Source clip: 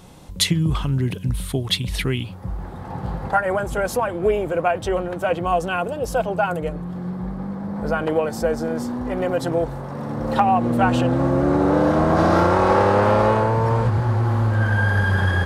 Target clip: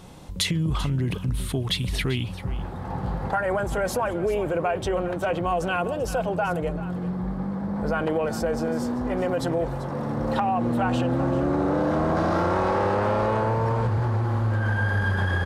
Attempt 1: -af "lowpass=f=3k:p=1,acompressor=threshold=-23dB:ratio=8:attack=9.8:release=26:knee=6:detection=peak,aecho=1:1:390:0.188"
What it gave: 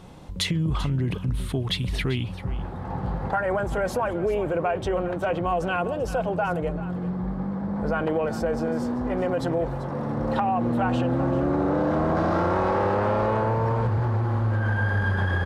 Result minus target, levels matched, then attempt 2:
8000 Hz band -5.0 dB
-af "lowpass=f=9.3k:p=1,acompressor=threshold=-23dB:ratio=8:attack=9.8:release=26:knee=6:detection=peak,aecho=1:1:390:0.188"

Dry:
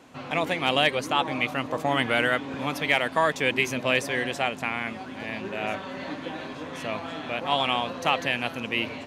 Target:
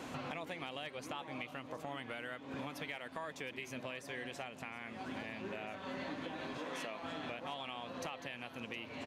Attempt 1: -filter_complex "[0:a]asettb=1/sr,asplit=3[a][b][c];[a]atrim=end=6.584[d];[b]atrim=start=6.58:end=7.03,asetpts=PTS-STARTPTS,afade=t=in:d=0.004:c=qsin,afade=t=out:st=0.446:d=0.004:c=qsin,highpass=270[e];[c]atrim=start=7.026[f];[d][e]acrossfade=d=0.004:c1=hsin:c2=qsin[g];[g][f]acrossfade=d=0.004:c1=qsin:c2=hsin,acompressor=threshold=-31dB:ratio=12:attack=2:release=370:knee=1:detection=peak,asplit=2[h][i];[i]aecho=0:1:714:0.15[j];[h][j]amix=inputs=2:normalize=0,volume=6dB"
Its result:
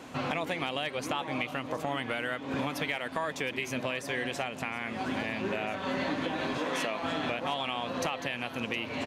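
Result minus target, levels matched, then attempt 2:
compressor: peak gain reduction -11 dB
-filter_complex "[0:a]asettb=1/sr,asplit=3[a][b][c];[a]atrim=end=6.584[d];[b]atrim=start=6.58:end=7.03,asetpts=PTS-STARTPTS,afade=t=in:d=0.004:c=qsin,afade=t=out:st=0.446:d=0.004:c=qsin,highpass=270[e];[c]atrim=start=7.026[f];[d][e]acrossfade=d=0.004:c1=hsin:c2=qsin[g];[g][f]acrossfade=d=0.004:c1=qsin:c2=hsin,acompressor=threshold=-43dB:ratio=12:attack=2:release=370:knee=1:detection=peak,asplit=2[h][i];[i]aecho=0:1:714:0.15[j];[h][j]amix=inputs=2:normalize=0,volume=6dB"

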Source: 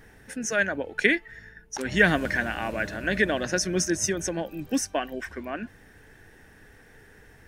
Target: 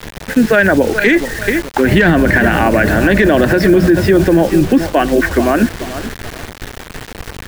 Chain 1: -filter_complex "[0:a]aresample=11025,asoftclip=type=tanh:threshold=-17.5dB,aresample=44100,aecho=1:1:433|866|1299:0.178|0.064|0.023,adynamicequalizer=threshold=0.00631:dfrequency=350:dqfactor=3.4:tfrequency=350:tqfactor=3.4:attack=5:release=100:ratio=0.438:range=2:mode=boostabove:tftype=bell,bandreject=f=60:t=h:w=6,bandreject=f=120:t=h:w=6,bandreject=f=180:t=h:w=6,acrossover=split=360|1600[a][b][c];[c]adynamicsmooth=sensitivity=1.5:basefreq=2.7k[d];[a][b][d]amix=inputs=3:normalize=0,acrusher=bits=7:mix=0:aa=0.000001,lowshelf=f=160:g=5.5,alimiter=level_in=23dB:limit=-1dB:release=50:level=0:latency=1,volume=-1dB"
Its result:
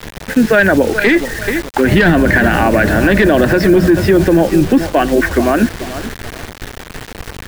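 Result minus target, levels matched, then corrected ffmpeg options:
soft clip: distortion +7 dB
-filter_complex "[0:a]aresample=11025,asoftclip=type=tanh:threshold=-10.5dB,aresample=44100,aecho=1:1:433|866|1299:0.178|0.064|0.023,adynamicequalizer=threshold=0.00631:dfrequency=350:dqfactor=3.4:tfrequency=350:tqfactor=3.4:attack=5:release=100:ratio=0.438:range=2:mode=boostabove:tftype=bell,bandreject=f=60:t=h:w=6,bandreject=f=120:t=h:w=6,bandreject=f=180:t=h:w=6,acrossover=split=360|1600[a][b][c];[c]adynamicsmooth=sensitivity=1.5:basefreq=2.7k[d];[a][b][d]amix=inputs=3:normalize=0,acrusher=bits=7:mix=0:aa=0.000001,lowshelf=f=160:g=5.5,alimiter=level_in=23dB:limit=-1dB:release=50:level=0:latency=1,volume=-1dB"

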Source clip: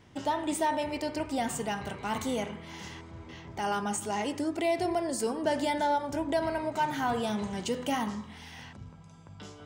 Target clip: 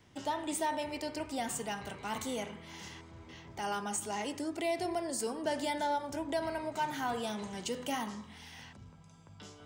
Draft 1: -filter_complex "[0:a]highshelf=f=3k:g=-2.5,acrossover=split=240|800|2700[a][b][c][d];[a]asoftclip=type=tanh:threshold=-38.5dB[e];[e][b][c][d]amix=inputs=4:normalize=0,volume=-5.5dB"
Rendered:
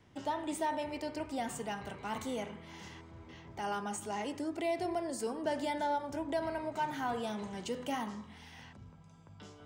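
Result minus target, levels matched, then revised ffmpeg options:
8000 Hz band -6.0 dB
-filter_complex "[0:a]highshelf=f=3k:g=5,acrossover=split=240|800|2700[a][b][c][d];[a]asoftclip=type=tanh:threshold=-38.5dB[e];[e][b][c][d]amix=inputs=4:normalize=0,volume=-5.5dB"

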